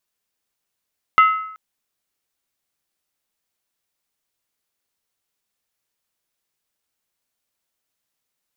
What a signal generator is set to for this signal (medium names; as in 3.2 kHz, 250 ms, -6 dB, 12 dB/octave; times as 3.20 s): skin hit length 0.38 s, lowest mode 1.29 kHz, decay 0.72 s, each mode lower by 9 dB, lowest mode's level -6.5 dB